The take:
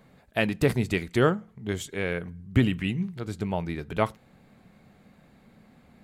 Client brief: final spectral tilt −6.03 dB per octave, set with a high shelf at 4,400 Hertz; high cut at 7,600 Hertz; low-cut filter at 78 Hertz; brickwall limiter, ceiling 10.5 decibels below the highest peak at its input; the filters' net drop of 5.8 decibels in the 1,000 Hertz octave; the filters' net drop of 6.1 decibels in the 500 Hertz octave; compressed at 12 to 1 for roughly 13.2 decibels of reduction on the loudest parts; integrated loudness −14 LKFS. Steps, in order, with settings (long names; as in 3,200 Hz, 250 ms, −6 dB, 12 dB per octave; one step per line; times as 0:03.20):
high-pass filter 78 Hz
low-pass filter 7,600 Hz
parametric band 500 Hz −6.5 dB
parametric band 1,000 Hz −5.5 dB
high-shelf EQ 4,400 Hz −7.5 dB
downward compressor 12 to 1, threshold −30 dBFS
level +27.5 dB
brickwall limiter −3 dBFS